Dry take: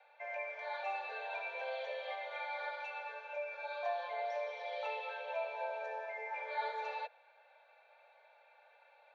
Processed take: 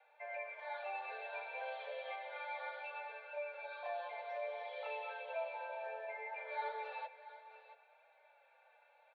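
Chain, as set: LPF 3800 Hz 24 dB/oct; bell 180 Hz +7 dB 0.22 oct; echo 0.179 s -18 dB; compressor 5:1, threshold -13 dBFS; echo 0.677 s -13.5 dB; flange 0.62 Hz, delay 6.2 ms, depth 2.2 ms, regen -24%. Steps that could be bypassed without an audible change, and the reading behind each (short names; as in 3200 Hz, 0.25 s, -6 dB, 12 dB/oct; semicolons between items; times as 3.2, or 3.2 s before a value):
bell 180 Hz: input band starts at 430 Hz; compressor, threshold -13 dBFS: input peak -26.0 dBFS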